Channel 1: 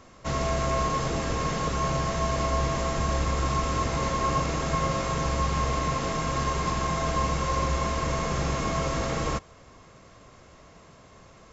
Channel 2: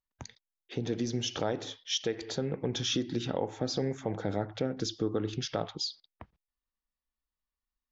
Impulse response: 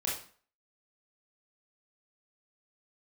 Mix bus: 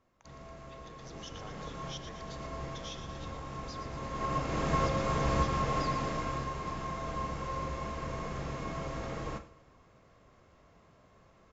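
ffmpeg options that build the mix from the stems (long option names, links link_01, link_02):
-filter_complex "[0:a]lowpass=frequency=2800:poles=1,volume=-1.5dB,afade=type=in:start_time=0.95:duration=0.56:silence=0.298538,afade=type=in:start_time=4.02:duration=0.66:silence=0.281838,afade=type=out:start_time=5.87:duration=0.6:silence=0.298538,asplit=3[link_01][link_02][link_03];[link_02]volume=-10dB[link_04];[link_03]volume=-19.5dB[link_05];[1:a]highpass=800,volume=-13.5dB,asplit=3[link_06][link_07][link_08];[link_07]volume=-9dB[link_09];[link_08]apad=whole_len=508434[link_10];[link_01][link_10]sidechaincompress=threshold=-51dB:ratio=8:attack=9.9:release=829[link_11];[2:a]atrim=start_sample=2205[link_12];[link_04][link_12]afir=irnorm=-1:irlink=0[link_13];[link_05][link_09]amix=inputs=2:normalize=0,aecho=0:1:117|234|351|468|585|702|819|936:1|0.54|0.292|0.157|0.085|0.0459|0.0248|0.0134[link_14];[link_11][link_06][link_13][link_14]amix=inputs=4:normalize=0"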